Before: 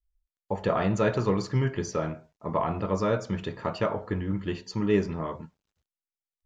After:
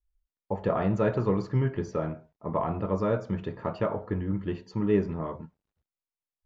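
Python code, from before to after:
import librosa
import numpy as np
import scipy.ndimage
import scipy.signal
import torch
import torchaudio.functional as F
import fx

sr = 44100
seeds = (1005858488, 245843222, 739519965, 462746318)

y = fx.lowpass(x, sr, hz=1200.0, slope=6)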